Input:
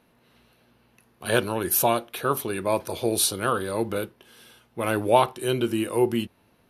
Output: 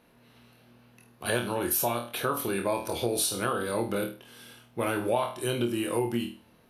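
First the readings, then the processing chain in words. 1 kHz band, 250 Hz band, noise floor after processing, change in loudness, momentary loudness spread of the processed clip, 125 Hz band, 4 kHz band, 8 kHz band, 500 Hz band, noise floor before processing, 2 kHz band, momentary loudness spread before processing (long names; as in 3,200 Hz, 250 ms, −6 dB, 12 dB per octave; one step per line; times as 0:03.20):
−6.0 dB, −3.5 dB, −60 dBFS, −4.5 dB, 10 LU, −3.5 dB, −4.0 dB, −4.0 dB, −5.0 dB, −63 dBFS, −3.0 dB, 10 LU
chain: on a send: flutter between parallel walls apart 4.3 metres, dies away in 0.31 s
on the sum: downward compressor 4 to 1, threshold −25 dBFS, peak gain reduction 12 dB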